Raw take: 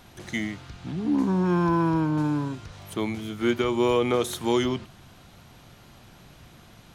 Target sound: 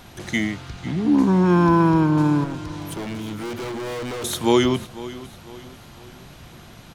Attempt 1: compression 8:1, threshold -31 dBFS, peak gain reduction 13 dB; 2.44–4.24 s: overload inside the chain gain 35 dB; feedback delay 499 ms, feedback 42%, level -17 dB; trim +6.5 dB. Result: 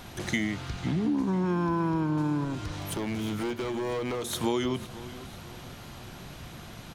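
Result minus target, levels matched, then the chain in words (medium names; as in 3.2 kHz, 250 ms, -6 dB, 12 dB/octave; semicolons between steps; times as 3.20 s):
compression: peak gain reduction +13 dB
2.44–4.24 s: overload inside the chain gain 35 dB; feedback delay 499 ms, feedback 42%, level -17 dB; trim +6.5 dB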